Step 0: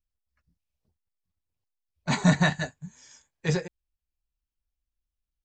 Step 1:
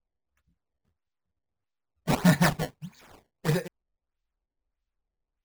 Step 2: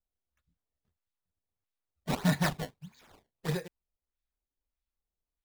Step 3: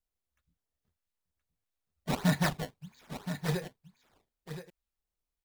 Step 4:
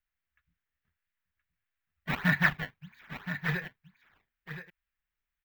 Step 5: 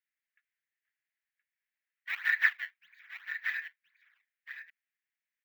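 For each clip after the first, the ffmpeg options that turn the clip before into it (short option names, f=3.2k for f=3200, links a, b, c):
-af "acrusher=samples=20:mix=1:aa=0.000001:lfo=1:lforange=32:lforate=1.6"
-af "equalizer=f=3.7k:t=o:w=0.39:g=4,volume=-6.5dB"
-af "aecho=1:1:1022:0.316"
-af "firequalizer=gain_entry='entry(160,0);entry(250,-4);entry(510,-7);entry(1700,13);entry(4400,-6);entry(10000,-18);entry(15000,2)':delay=0.05:min_phase=1,volume=-1dB"
-af "highpass=f=1.9k:t=q:w=2.8,volume=-7dB"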